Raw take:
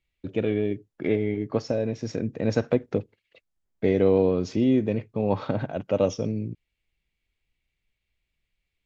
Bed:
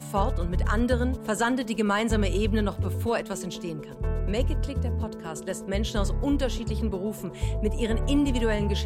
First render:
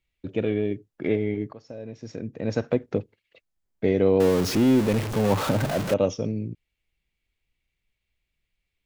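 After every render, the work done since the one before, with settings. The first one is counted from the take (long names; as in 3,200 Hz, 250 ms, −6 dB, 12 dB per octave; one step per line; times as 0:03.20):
0:01.53–0:02.89: fade in, from −22 dB
0:04.20–0:05.94: converter with a step at zero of −24 dBFS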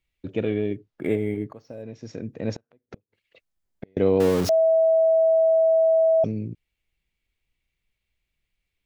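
0:00.75–0:01.83: linearly interpolated sample-rate reduction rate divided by 4×
0:02.51–0:03.97: gate with flip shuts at −25 dBFS, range −39 dB
0:04.49–0:06.24: beep over 649 Hz −15 dBFS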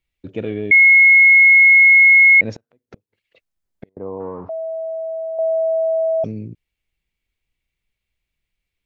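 0:00.71–0:02.41: beep over 2,170 Hz −6 dBFS
0:03.89–0:05.39: transistor ladder low-pass 1,100 Hz, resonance 70%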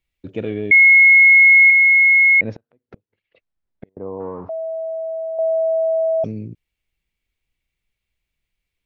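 0:01.70–0:04.19: high-frequency loss of the air 240 metres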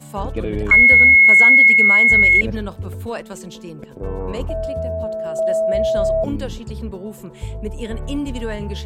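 mix in bed −1 dB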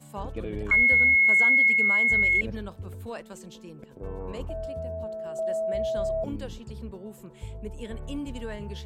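level −10 dB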